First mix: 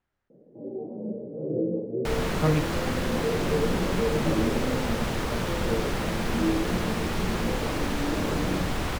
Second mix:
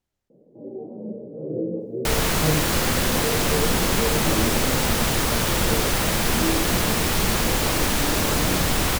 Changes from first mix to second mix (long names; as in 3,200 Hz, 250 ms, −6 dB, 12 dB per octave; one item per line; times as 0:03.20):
speech: add parametric band 1,500 Hz −9.5 dB 1.5 octaves
second sound +5.5 dB
master: remove low-pass filter 2,300 Hz 6 dB per octave